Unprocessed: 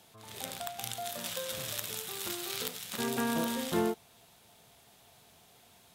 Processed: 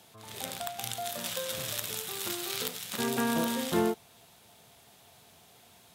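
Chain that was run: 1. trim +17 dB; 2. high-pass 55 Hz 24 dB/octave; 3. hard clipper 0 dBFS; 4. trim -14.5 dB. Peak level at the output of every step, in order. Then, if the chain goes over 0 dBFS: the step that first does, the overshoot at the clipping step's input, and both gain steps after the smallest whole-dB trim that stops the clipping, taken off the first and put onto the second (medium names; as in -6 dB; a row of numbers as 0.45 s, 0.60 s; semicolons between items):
+4.0 dBFS, +4.0 dBFS, 0.0 dBFS, -14.5 dBFS; step 1, 4.0 dB; step 1 +13 dB, step 4 -10.5 dB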